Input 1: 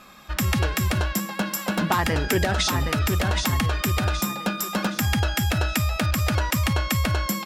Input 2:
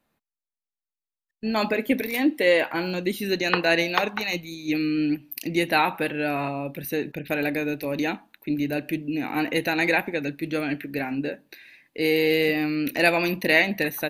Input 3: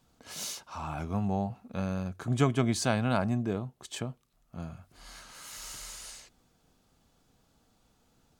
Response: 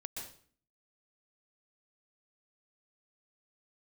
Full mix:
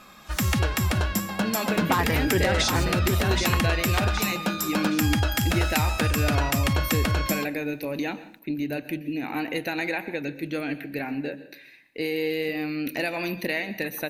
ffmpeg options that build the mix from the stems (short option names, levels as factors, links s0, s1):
-filter_complex "[0:a]volume=0.841,asplit=2[s0][s1];[s1]volume=0.0944[s2];[1:a]acompressor=threshold=0.0708:ratio=6,volume=0.708,asplit=2[s3][s4];[s4]volume=0.355[s5];[2:a]highshelf=f=5000:g=6.5,asoftclip=type=tanh:threshold=0.0355,volume=0.531[s6];[3:a]atrim=start_sample=2205[s7];[s2][s5]amix=inputs=2:normalize=0[s8];[s8][s7]afir=irnorm=-1:irlink=0[s9];[s0][s3][s6][s9]amix=inputs=4:normalize=0"